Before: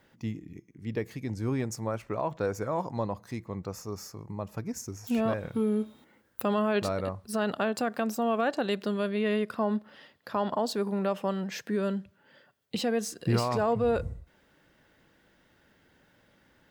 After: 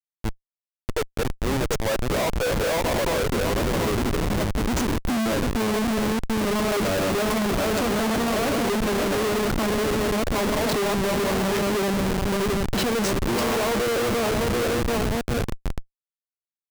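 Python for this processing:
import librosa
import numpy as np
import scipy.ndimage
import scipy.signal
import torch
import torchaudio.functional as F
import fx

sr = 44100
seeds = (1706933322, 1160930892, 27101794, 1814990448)

y = fx.reverse_delay_fb(x, sr, ms=367, feedback_pct=66, wet_db=-6.5)
y = fx.filter_sweep_highpass(y, sr, from_hz=580.0, to_hz=280.0, start_s=2.43, end_s=4.08, q=1.8)
y = fx.schmitt(y, sr, flips_db=-34.5)
y = F.gain(torch.from_numpy(y), 6.0).numpy()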